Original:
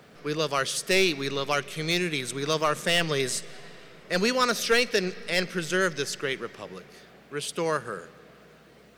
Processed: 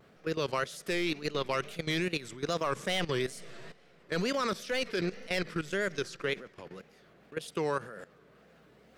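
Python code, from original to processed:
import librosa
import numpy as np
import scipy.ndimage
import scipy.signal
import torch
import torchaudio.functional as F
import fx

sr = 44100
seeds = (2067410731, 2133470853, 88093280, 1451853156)

y = fx.high_shelf(x, sr, hz=3000.0, db=-5.5)
y = fx.wow_flutter(y, sr, seeds[0], rate_hz=2.1, depth_cents=150.0)
y = fx.level_steps(y, sr, step_db=15)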